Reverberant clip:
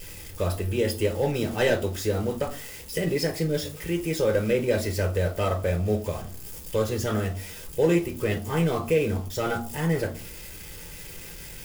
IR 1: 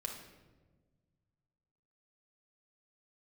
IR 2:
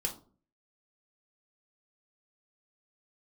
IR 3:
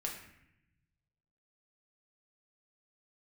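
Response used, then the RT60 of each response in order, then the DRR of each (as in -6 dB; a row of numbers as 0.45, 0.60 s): 2; 1.3, 0.45, 0.80 s; 1.0, 1.0, -1.0 dB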